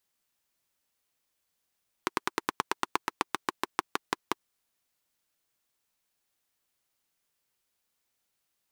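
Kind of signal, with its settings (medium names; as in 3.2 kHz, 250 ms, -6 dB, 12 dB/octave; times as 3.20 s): single-cylinder engine model, changing speed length 2.31 s, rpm 1200, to 600, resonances 370/980 Hz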